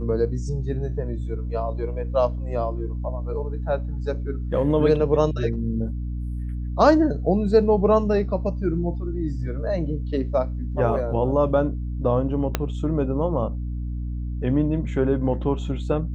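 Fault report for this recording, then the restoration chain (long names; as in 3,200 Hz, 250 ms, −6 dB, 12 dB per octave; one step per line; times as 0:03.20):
mains hum 60 Hz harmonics 5 −28 dBFS
0:12.55: click −6 dBFS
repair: click removal
hum removal 60 Hz, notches 5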